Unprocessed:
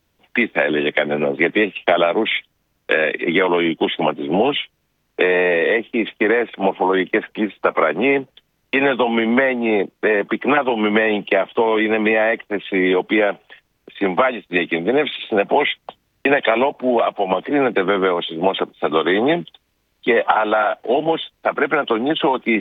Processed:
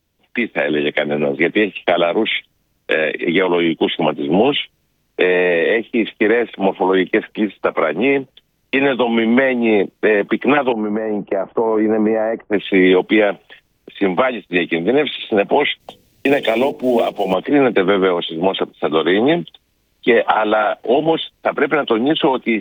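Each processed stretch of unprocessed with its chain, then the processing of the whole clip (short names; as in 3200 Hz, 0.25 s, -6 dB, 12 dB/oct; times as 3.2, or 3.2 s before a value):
10.72–12.53 LPF 1400 Hz 24 dB/oct + compressor 3:1, threshold -22 dBFS
15.8–17.34 G.711 law mismatch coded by mu + bell 1300 Hz -9.5 dB 1.2 oct + notches 50/100/150/200/250/300/350/400/450/500 Hz
whole clip: bell 1200 Hz -5.5 dB 2.2 oct; AGC; gain -1 dB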